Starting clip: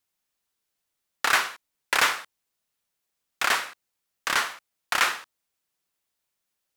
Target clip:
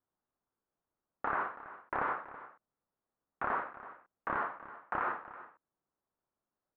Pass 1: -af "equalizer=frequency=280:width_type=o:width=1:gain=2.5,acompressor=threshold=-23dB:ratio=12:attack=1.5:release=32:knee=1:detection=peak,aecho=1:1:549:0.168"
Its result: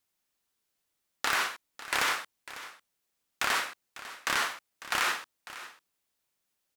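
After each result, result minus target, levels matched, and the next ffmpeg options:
echo 221 ms late; 1,000 Hz band −5.5 dB
-af "equalizer=frequency=280:width_type=o:width=1:gain=2.5,acompressor=threshold=-23dB:ratio=12:attack=1.5:release=32:knee=1:detection=peak,aecho=1:1:328:0.168"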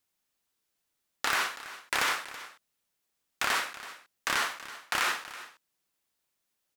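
1,000 Hz band −5.5 dB
-af "equalizer=frequency=280:width_type=o:width=1:gain=2.5,acompressor=threshold=-23dB:ratio=12:attack=1.5:release=32:knee=1:detection=peak,lowpass=frequency=1300:width=0.5412,lowpass=frequency=1300:width=1.3066,aecho=1:1:328:0.168"

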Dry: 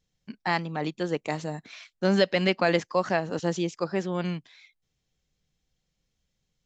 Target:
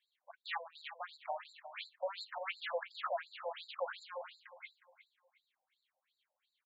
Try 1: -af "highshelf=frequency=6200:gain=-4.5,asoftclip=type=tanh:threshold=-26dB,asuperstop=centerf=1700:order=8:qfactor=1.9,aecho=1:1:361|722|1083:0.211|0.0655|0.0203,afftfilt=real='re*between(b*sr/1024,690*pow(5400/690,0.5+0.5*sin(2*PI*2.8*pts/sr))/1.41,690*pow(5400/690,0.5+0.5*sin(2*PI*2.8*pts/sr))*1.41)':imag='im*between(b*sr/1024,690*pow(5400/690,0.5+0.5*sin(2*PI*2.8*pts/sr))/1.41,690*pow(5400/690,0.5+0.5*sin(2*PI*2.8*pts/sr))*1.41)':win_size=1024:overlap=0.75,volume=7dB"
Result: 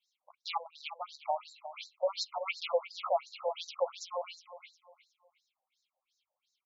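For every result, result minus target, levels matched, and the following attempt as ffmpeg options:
2,000 Hz band −7.0 dB; soft clipping: distortion −5 dB
-af "highshelf=frequency=6200:gain=-4.5,asoftclip=type=tanh:threshold=-26dB,asuperstop=centerf=5800:order=8:qfactor=1.9,aecho=1:1:361|722|1083:0.211|0.0655|0.0203,afftfilt=real='re*between(b*sr/1024,690*pow(5400/690,0.5+0.5*sin(2*PI*2.8*pts/sr))/1.41,690*pow(5400/690,0.5+0.5*sin(2*PI*2.8*pts/sr))*1.41)':imag='im*between(b*sr/1024,690*pow(5400/690,0.5+0.5*sin(2*PI*2.8*pts/sr))/1.41,690*pow(5400/690,0.5+0.5*sin(2*PI*2.8*pts/sr))*1.41)':win_size=1024:overlap=0.75,volume=7dB"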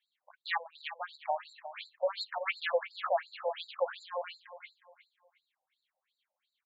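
soft clipping: distortion −5 dB
-af "highshelf=frequency=6200:gain=-4.5,asoftclip=type=tanh:threshold=-36.5dB,asuperstop=centerf=5800:order=8:qfactor=1.9,aecho=1:1:361|722|1083:0.211|0.0655|0.0203,afftfilt=real='re*between(b*sr/1024,690*pow(5400/690,0.5+0.5*sin(2*PI*2.8*pts/sr))/1.41,690*pow(5400/690,0.5+0.5*sin(2*PI*2.8*pts/sr))*1.41)':imag='im*between(b*sr/1024,690*pow(5400/690,0.5+0.5*sin(2*PI*2.8*pts/sr))/1.41,690*pow(5400/690,0.5+0.5*sin(2*PI*2.8*pts/sr))*1.41)':win_size=1024:overlap=0.75,volume=7dB"

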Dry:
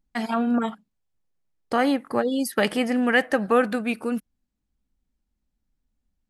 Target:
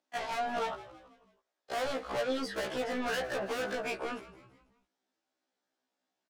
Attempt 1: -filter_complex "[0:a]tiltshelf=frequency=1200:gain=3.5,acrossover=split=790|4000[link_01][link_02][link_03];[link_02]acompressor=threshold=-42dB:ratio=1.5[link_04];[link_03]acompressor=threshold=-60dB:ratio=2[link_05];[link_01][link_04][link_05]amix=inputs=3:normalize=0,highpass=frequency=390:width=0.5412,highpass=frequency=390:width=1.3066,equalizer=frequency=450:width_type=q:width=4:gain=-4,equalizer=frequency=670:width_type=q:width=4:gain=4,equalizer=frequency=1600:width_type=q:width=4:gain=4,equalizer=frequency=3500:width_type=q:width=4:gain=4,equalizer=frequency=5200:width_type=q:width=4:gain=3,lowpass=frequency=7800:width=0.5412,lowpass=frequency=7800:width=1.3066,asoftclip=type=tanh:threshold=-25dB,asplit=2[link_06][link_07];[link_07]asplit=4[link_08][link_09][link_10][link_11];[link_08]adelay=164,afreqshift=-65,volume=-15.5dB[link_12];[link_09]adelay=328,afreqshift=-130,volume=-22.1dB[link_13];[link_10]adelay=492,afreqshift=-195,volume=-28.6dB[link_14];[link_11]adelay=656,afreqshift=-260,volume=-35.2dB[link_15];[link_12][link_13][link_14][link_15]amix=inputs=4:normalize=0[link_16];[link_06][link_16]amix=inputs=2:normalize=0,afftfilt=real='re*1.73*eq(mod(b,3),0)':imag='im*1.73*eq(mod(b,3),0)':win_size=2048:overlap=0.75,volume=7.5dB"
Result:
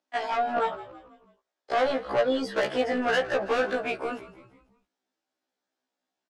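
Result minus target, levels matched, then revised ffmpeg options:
soft clipping: distortion −5 dB
-filter_complex "[0:a]tiltshelf=frequency=1200:gain=3.5,acrossover=split=790|4000[link_01][link_02][link_03];[link_02]acompressor=threshold=-42dB:ratio=1.5[link_04];[link_03]acompressor=threshold=-60dB:ratio=2[link_05];[link_01][link_04][link_05]amix=inputs=3:normalize=0,highpass=frequency=390:width=0.5412,highpass=frequency=390:width=1.3066,equalizer=frequency=450:width_type=q:width=4:gain=-4,equalizer=frequency=670:width_type=q:width=4:gain=4,equalizer=frequency=1600:width_type=q:width=4:gain=4,equalizer=frequency=3500:width_type=q:width=4:gain=4,equalizer=frequency=5200:width_type=q:width=4:gain=3,lowpass=frequency=7800:width=0.5412,lowpass=frequency=7800:width=1.3066,asoftclip=type=tanh:threshold=-36.5dB,asplit=2[link_06][link_07];[link_07]asplit=4[link_08][link_09][link_10][link_11];[link_08]adelay=164,afreqshift=-65,volume=-15.5dB[link_12];[link_09]adelay=328,afreqshift=-130,volume=-22.1dB[link_13];[link_10]adelay=492,afreqshift=-195,volume=-28.6dB[link_14];[link_11]adelay=656,afreqshift=-260,volume=-35.2dB[link_15];[link_12][link_13][link_14][link_15]amix=inputs=4:normalize=0[link_16];[link_06][link_16]amix=inputs=2:normalize=0,afftfilt=real='re*1.73*eq(mod(b,3),0)':imag='im*1.73*eq(mod(b,3),0)':win_size=2048:overlap=0.75,volume=7.5dB"

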